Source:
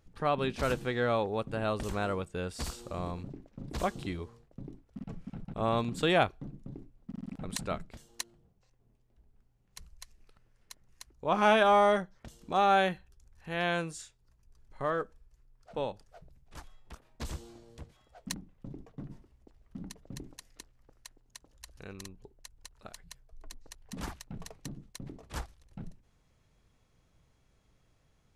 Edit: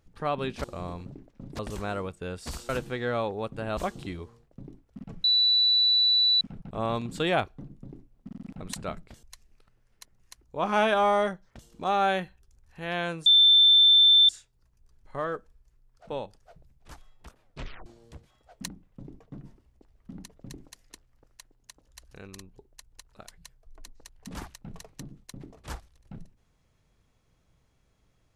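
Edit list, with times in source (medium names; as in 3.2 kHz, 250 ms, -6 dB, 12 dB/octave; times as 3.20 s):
0.64–1.72 s: swap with 2.82–3.77 s
5.24 s: add tone 3.96 kHz -18.5 dBFS 1.17 s
8.06–9.92 s: delete
13.95 s: add tone 3.55 kHz -14 dBFS 1.03 s
17.07 s: tape stop 0.45 s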